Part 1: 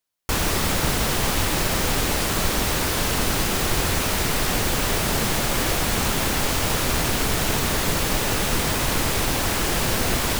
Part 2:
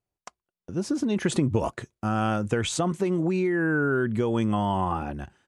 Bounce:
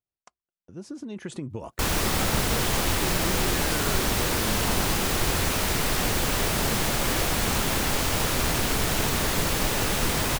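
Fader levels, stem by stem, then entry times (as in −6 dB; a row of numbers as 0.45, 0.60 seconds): −2.5, −11.0 decibels; 1.50, 0.00 seconds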